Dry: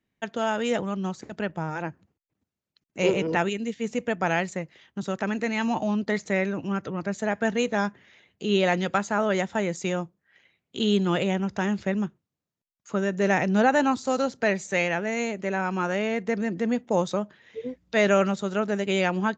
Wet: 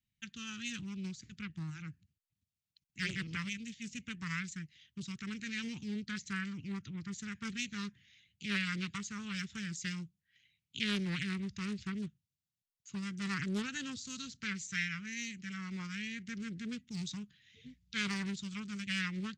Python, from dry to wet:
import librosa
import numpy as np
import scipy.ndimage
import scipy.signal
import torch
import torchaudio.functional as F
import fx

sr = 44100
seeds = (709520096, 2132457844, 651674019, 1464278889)

y = scipy.signal.sosfilt(scipy.signal.cheby1(2, 1.0, [130.0, 3100.0], 'bandstop', fs=sr, output='sos'), x)
y = fx.doppler_dist(y, sr, depth_ms=0.56)
y = F.gain(torch.from_numpy(y), -3.5).numpy()